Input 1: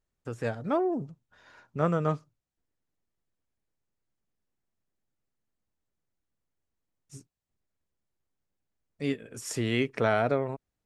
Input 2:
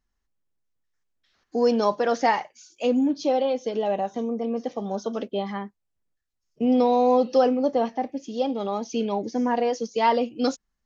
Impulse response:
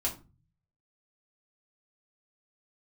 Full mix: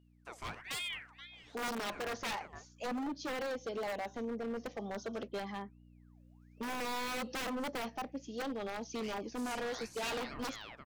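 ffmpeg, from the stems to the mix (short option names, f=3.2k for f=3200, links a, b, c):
-filter_complex "[0:a]equalizer=f=180:w=0.34:g=-13,aeval=exprs='val(0)*sin(2*PI*1700*n/s+1700*0.7/1.2*sin(2*PI*1.2*n/s))':c=same,volume=-0.5dB,asplit=3[a][b][c];[b]volume=-21.5dB[d];[c]volume=-17dB[e];[1:a]aeval=exprs='val(0)+0.00631*(sin(2*PI*60*n/s)+sin(2*PI*2*60*n/s)/2+sin(2*PI*3*60*n/s)/3+sin(2*PI*4*60*n/s)/4+sin(2*PI*5*60*n/s)/5)':c=same,aeval=exprs='(mod(6.31*val(0)+1,2)-1)/6.31':c=same,lowshelf=f=140:g=-9,volume=-14.5dB,asplit=2[f][g];[g]apad=whole_len=478504[h];[a][h]sidechaincompress=threshold=-59dB:ratio=5:attack=28:release=513[i];[2:a]atrim=start_sample=2205[j];[d][j]afir=irnorm=-1:irlink=0[k];[e]aecho=0:1:479:1[l];[i][f][k][l]amix=inputs=4:normalize=0,dynaudnorm=f=740:g=7:m=6dB,aeval=exprs='0.0237*(abs(mod(val(0)/0.0237+3,4)-2)-1)':c=same"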